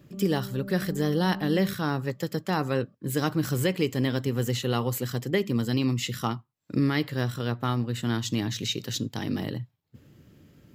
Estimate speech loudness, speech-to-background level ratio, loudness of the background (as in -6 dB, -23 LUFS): -28.0 LUFS, 10.0 dB, -38.0 LUFS